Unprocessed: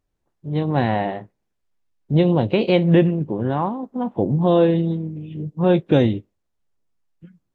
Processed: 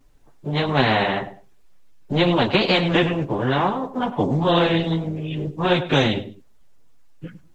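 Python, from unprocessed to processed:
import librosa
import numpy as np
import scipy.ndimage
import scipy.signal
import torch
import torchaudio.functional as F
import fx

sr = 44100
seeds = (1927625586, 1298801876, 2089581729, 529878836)

y = fx.chorus_voices(x, sr, voices=6, hz=0.91, base_ms=11, depth_ms=4.3, mix_pct=65)
y = fx.echo_feedback(y, sr, ms=102, feedback_pct=20, wet_db=-21.0)
y = fx.spectral_comp(y, sr, ratio=2.0)
y = y * 10.0 ** (3.5 / 20.0)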